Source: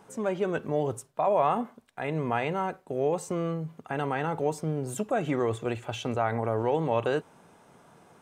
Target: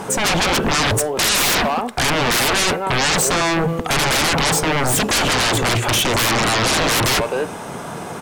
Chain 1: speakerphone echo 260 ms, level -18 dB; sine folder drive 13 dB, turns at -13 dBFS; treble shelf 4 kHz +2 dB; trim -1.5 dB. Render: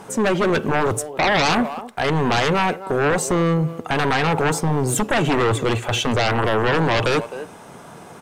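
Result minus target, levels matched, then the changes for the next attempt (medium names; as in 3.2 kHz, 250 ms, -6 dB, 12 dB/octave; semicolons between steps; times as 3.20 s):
sine folder: distortion -19 dB
change: sine folder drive 24 dB, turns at -13 dBFS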